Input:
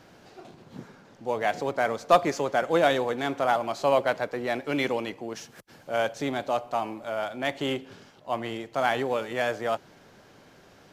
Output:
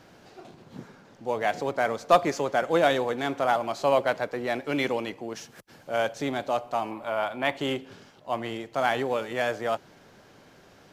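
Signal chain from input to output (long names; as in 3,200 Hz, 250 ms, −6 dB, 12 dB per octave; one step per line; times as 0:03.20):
0:06.91–0:07.57: graphic EQ with 15 bands 1,000 Hz +8 dB, 2,500 Hz +4 dB, 6,300 Hz −7 dB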